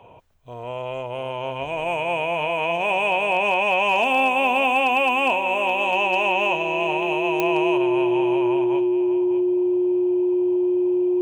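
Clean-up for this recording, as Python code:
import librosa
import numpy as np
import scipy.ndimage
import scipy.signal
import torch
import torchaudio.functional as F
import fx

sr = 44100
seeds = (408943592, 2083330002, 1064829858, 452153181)

y = fx.fix_declip(x, sr, threshold_db=-10.0)
y = fx.fix_declick_ar(y, sr, threshold=10.0)
y = fx.notch(y, sr, hz=360.0, q=30.0)
y = fx.fix_echo_inverse(y, sr, delay_ms=604, level_db=-11.5)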